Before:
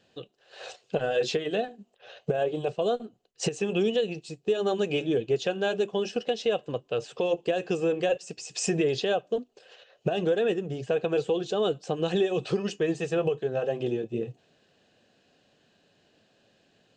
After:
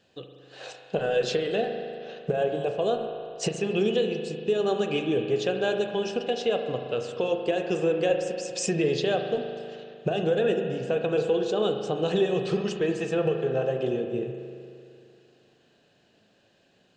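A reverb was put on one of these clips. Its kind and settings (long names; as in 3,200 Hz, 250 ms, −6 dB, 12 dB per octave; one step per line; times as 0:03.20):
spring reverb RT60 2.4 s, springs 38 ms, chirp 35 ms, DRR 4.5 dB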